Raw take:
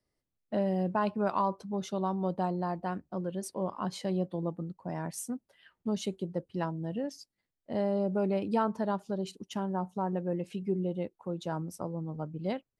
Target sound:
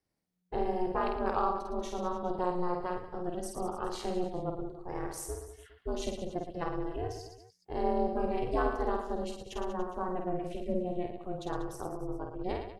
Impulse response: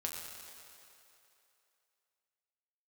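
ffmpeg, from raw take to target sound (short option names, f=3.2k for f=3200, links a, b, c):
-af "aecho=1:1:50|112.5|190.6|288.3|410.4:0.631|0.398|0.251|0.158|0.1,aeval=exprs='val(0)*sin(2*PI*180*n/s)':c=same"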